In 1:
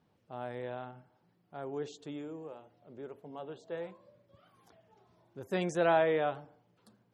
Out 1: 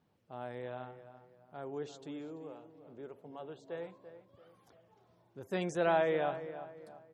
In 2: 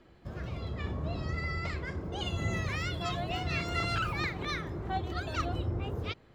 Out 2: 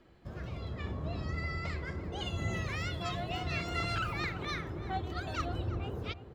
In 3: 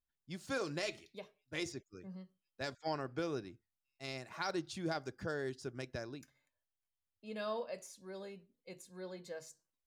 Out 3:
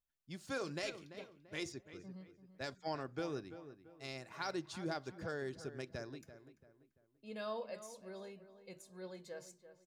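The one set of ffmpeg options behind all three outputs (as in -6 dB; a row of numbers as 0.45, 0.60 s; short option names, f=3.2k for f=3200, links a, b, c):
-filter_complex "[0:a]asplit=2[a][b];[b]adelay=339,lowpass=f=2.2k:p=1,volume=-12dB,asplit=2[c][d];[d]adelay=339,lowpass=f=2.2k:p=1,volume=0.38,asplit=2[e][f];[f]adelay=339,lowpass=f=2.2k:p=1,volume=0.38,asplit=2[g][h];[h]adelay=339,lowpass=f=2.2k:p=1,volume=0.38[i];[a][c][e][g][i]amix=inputs=5:normalize=0,volume=-2.5dB"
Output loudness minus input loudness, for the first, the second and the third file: -2.5, -2.5, -2.5 LU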